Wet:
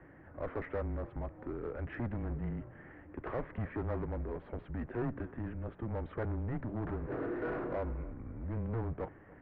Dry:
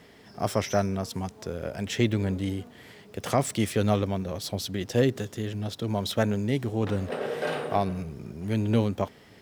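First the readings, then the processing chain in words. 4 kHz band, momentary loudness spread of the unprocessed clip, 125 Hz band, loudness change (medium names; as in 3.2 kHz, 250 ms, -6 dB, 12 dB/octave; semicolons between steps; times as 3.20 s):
under -30 dB, 10 LU, -9.5 dB, -11.0 dB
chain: saturation -27 dBFS, distortion -7 dB; mistuned SSB -120 Hz 160–2100 Hz; thinning echo 290 ms, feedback 49%, level -21 dB; in parallel at -7 dB: hard clipper -37.5 dBFS, distortion -6 dB; on the sum: distance through air 200 m; trim -4.5 dB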